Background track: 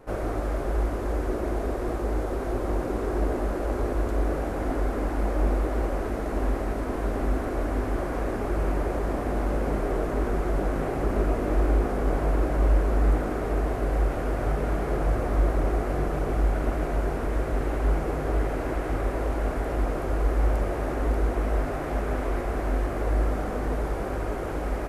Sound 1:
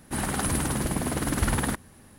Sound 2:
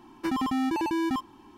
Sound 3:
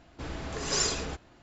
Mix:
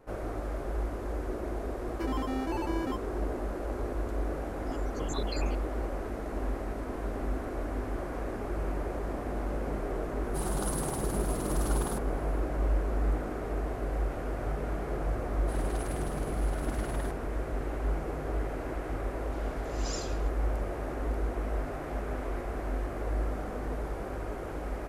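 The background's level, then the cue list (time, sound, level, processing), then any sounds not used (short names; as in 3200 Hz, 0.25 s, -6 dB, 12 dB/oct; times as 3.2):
background track -7 dB
1.76 add 2 -7 dB + notch 3700 Hz
4.44 add 3 -0.5 dB + random spectral dropouts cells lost 81%
10.23 add 1 -6.5 dB + fixed phaser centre 400 Hz, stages 8
15.36 add 1 -14 dB + high shelf 9700 Hz -5 dB
19.13 add 3 -12 dB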